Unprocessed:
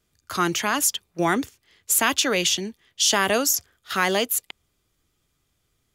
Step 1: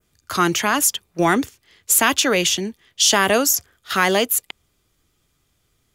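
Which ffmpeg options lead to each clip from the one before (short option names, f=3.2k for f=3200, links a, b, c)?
-af "adynamicequalizer=threshold=0.0178:dfrequency=4300:dqfactor=0.97:tfrequency=4300:tqfactor=0.97:attack=5:release=100:ratio=0.375:range=2.5:mode=cutabove:tftype=bell,acontrast=23"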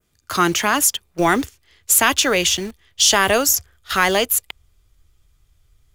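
-filter_complex "[0:a]asplit=2[a][b];[b]acrusher=bits=4:mix=0:aa=0.000001,volume=-8.5dB[c];[a][c]amix=inputs=2:normalize=0,asubboost=boost=10:cutoff=71,volume=-1.5dB"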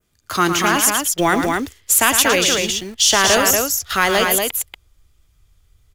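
-af "aecho=1:1:110.8|236.2:0.398|0.631"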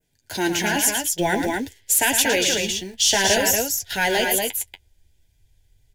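-af "flanger=delay=6.6:depth=5.3:regen=-34:speed=0.5:shape=triangular,asuperstop=centerf=1200:order=8:qfactor=2.5"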